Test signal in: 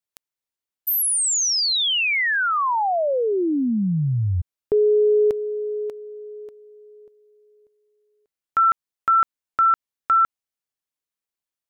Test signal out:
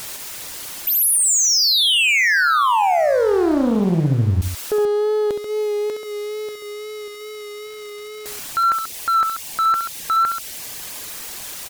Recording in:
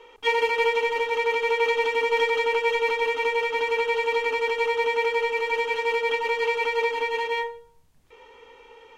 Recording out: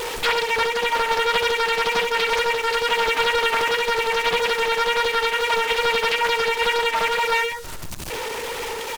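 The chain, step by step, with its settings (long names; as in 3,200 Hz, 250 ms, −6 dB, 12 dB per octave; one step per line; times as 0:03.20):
converter with a step at zero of −33.5 dBFS
reverb reduction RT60 0.81 s
high-shelf EQ 4,700 Hz +4 dB
in parallel at −2 dB: downward compressor, threshold −30 dBFS
on the sum: brickwall limiter −17 dBFS
hard clipping −19.5 dBFS
on a send: loudspeakers that aren't time-aligned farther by 23 metres −8 dB, 46 metres −9 dB
on the sum: tape wow and flutter 25 cents
highs frequency-modulated by the lows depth 0.91 ms
level +4 dB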